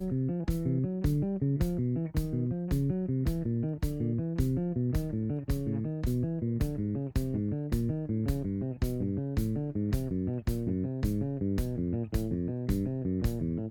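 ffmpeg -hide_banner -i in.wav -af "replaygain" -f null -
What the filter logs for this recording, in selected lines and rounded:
track_gain = +15.6 dB
track_peak = 0.118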